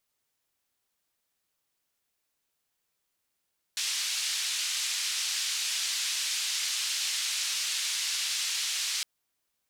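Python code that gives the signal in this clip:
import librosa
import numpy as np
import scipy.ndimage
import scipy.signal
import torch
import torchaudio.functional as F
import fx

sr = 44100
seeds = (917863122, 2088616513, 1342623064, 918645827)

y = fx.band_noise(sr, seeds[0], length_s=5.26, low_hz=2800.0, high_hz=6000.0, level_db=-31.0)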